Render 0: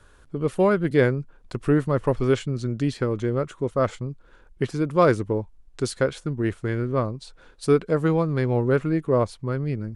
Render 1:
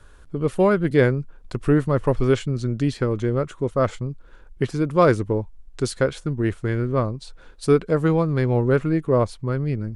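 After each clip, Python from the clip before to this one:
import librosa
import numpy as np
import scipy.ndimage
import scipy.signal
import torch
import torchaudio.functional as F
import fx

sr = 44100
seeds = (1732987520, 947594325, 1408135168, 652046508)

y = fx.low_shelf(x, sr, hz=66.0, db=7.0)
y = y * librosa.db_to_amplitude(1.5)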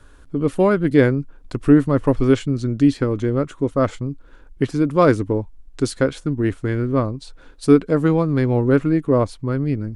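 y = fx.peak_eq(x, sr, hz=280.0, db=9.5, octaves=0.26)
y = y * librosa.db_to_amplitude(1.0)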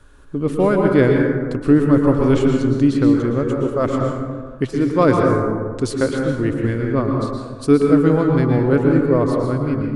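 y = fx.rev_plate(x, sr, seeds[0], rt60_s=1.6, hf_ratio=0.4, predelay_ms=105, drr_db=0.5)
y = y * librosa.db_to_amplitude(-1.0)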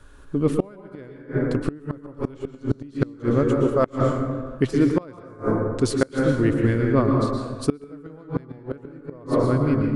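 y = fx.gate_flip(x, sr, shuts_db=-7.0, range_db=-27)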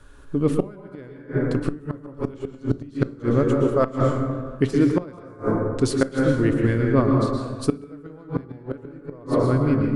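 y = fx.room_shoebox(x, sr, seeds[1], volume_m3=370.0, walls='furnished', distance_m=0.3)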